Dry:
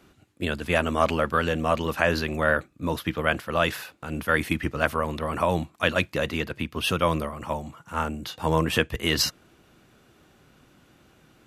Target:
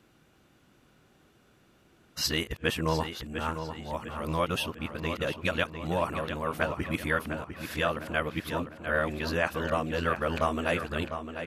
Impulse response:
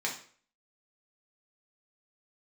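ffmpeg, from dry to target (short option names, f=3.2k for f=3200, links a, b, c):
-filter_complex "[0:a]areverse,asplit=2[a][b];[b]adelay=701,lowpass=f=4.5k:p=1,volume=-8.5dB,asplit=2[c][d];[d]adelay=701,lowpass=f=4.5k:p=1,volume=0.46,asplit=2[e][f];[f]adelay=701,lowpass=f=4.5k:p=1,volume=0.46,asplit=2[g][h];[h]adelay=701,lowpass=f=4.5k:p=1,volume=0.46,asplit=2[i][j];[j]adelay=701,lowpass=f=4.5k:p=1,volume=0.46[k];[a][c][e][g][i][k]amix=inputs=6:normalize=0,volume=-5.5dB"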